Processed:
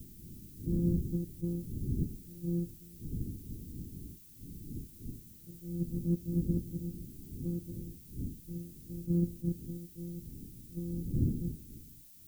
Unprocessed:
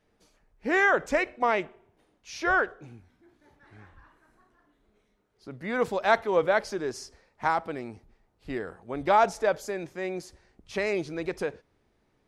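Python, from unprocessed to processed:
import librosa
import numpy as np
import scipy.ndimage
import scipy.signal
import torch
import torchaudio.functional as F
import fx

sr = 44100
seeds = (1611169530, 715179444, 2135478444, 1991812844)

y = np.r_[np.sort(x[:len(x) // 256 * 256].reshape(-1, 256), axis=1).ravel(), x[len(x) // 256 * 256:]]
y = fx.dmg_wind(y, sr, seeds[0], corner_hz=200.0, level_db=-34.0)
y = scipy.signal.sosfilt(scipy.signal.cheby2(4, 40, 700.0, 'lowpass', fs=sr, output='sos'), y)
y = fx.dmg_noise_colour(y, sr, seeds[1], colour='violet', level_db=-50.0)
y = fx.attack_slew(y, sr, db_per_s=410.0)
y = y * 10.0 ** (-6.5 / 20.0)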